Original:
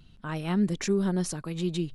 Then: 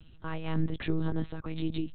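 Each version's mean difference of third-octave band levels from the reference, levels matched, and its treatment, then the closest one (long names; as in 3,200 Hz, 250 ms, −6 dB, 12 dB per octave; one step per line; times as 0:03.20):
7.0 dB: in parallel at −1 dB: downward compressor, threshold −36 dBFS, peak gain reduction 14.5 dB
on the sum: one-pitch LPC vocoder at 8 kHz 160 Hz
level −4 dB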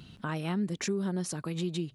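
3.0 dB: high-pass filter 100 Hz
downward compressor 2.5 to 1, threshold −44 dBFS, peak gain reduction 15 dB
level +8.5 dB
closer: second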